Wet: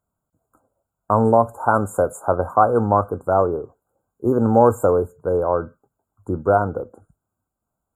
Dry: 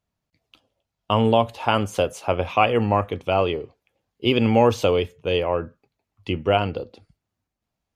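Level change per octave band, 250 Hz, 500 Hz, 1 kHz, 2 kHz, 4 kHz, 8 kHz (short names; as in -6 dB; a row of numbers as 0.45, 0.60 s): +1.5 dB, +3.0 dB, +4.0 dB, -4.0 dB, under -40 dB, n/a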